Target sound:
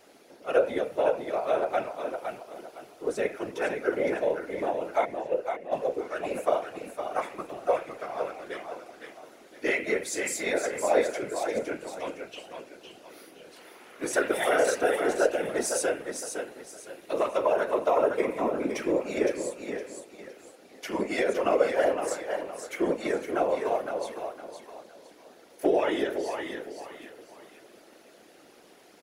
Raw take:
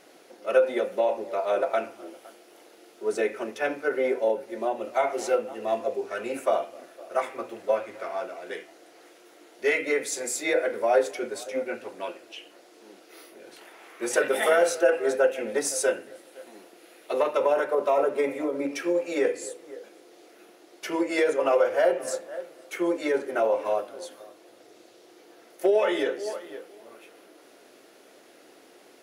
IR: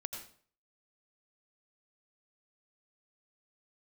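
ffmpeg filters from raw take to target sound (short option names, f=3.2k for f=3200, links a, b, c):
-filter_complex "[0:a]asplit=3[a][b][c];[a]afade=t=out:st=5.04:d=0.02[d];[b]asplit=3[e][f][g];[e]bandpass=f=530:t=q:w=8,volume=0dB[h];[f]bandpass=f=1.84k:t=q:w=8,volume=-6dB[i];[g]bandpass=f=2.48k:t=q:w=8,volume=-9dB[j];[h][i][j]amix=inputs=3:normalize=0,afade=t=in:st=5.04:d=0.02,afade=t=out:st=5.71:d=0.02[k];[c]afade=t=in:st=5.71:d=0.02[l];[d][k][l]amix=inputs=3:normalize=0,asplit=2[m][n];[n]aecho=0:1:512|1024|1536|2048:0.501|0.16|0.0513|0.0164[o];[m][o]amix=inputs=2:normalize=0,afftfilt=real='hypot(re,im)*cos(2*PI*random(0))':imag='hypot(re,im)*sin(2*PI*random(1))':win_size=512:overlap=0.75,volume=3.5dB"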